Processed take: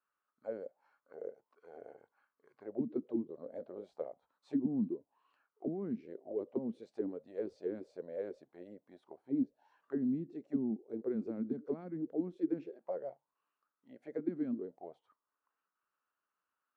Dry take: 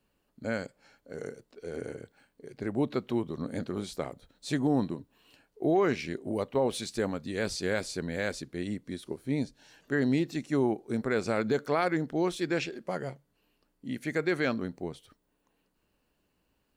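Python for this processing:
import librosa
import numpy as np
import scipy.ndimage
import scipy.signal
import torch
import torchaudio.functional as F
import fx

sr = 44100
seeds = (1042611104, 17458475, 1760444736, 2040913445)

y = fx.dynamic_eq(x, sr, hz=350.0, q=1.0, threshold_db=-52.0, ratio=4.0, max_db=6, at=(0.64, 1.28))
y = fx.auto_wah(y, sr, base_hz=220.0, top_hz=1300.0, q=6.4, full_db=-23.5, direction='down')
y = y * librosa.db_to_amplitude(1.5)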